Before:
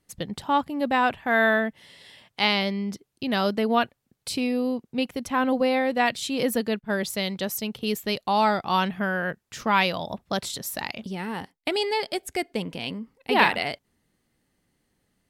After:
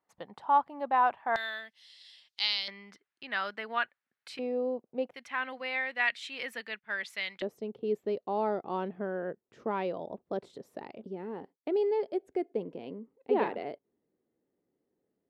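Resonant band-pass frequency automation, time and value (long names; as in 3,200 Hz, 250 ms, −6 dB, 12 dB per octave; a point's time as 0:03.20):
resonant band-pass, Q 2.2
910 Hz
from 0:01.36 4,500 Hz
from 0:02.68 1,700 Hz
from 0:04.39 580 Hz
from 0:05.14 2,000 Hz
from 0:07.42 410 Hz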